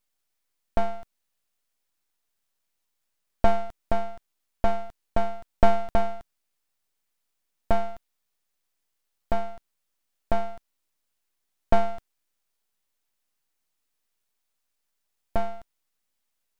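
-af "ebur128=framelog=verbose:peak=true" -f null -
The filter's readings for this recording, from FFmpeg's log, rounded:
Integrated loudness:
  I:         -30.0 LUFS
  Threshold: -40.8 LUFS
Loudness range:
  LRA:        11.4 LU
  Threshold: -53.8 LUFS
  LRA low:   -41.6 LUFS
  LRA high:  -30.2 LUFS
True peak:
  Peak:       -4.3 dBFS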